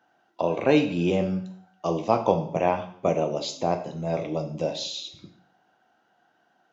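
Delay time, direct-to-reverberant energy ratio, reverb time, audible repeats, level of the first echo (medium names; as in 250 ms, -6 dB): no echo, 5.0 dB, 0.60 s, no echo, no echo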